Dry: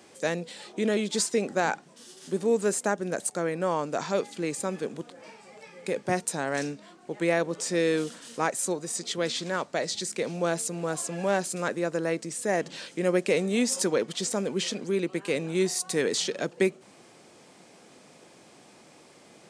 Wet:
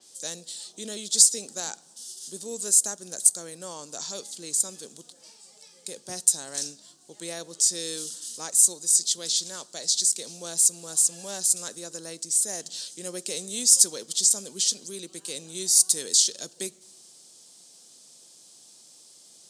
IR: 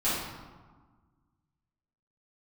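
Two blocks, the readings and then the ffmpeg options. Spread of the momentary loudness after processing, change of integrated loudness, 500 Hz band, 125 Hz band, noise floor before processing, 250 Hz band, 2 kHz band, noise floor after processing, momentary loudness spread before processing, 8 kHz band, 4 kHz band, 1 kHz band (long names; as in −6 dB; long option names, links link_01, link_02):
19 LU, +6.0 dB, −13.5 dB, −13.5 dB, −55 dBFS, −13.5 dB, −13.5 dB, −55 dBFS, 10 LU, +13.0 dB, +6.0 dB, −13.5 dB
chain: -filter_complex "[0:a]asplit=2[link_01][link_02];[1:a]atrim=start_sample=2205,adelay=9[link_03];[link_02][link_03]afir=irnorm=-1:irlink=0,volume=-33dB[link_04];[link_01][link_04]amix=inputs=2:normalize=0,aexciter=amount=13.8:drive=2.5:freq=3400,adynamicequalizer=threshold=0.0891:dfrequency=5000:dqfactor=0.7:tfrequency=5000:tqfactor=0.7:attack=5:release=100:ratio=0.375:range=2:mode=boostabove:tftype=highshelf,volume=-13.5dB"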